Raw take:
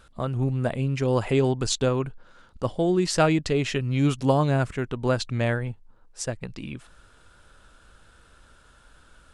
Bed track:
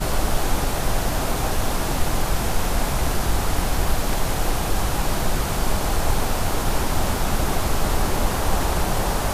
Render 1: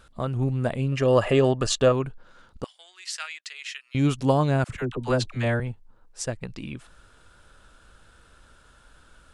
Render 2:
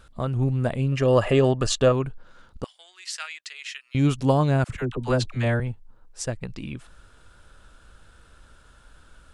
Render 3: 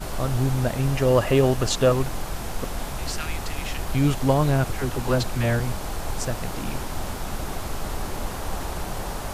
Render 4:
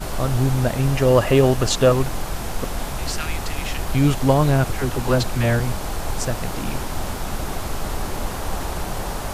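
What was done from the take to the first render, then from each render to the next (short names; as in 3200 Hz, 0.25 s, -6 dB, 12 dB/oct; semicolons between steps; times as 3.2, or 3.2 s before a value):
0.92–1.92 small resonant body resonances 600/1200/1700/2800 Hz, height 12 dB, ringing for 25 ms; 2.64–3.95 ladder high-pass 1400 Hz, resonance 20%; 4.64–5.6 dispersion lows, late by 55 ms, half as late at 650 Hz
low shelf 130 Hz +4.5 dB
add bed track -8.5 dB
gain +3.5 dB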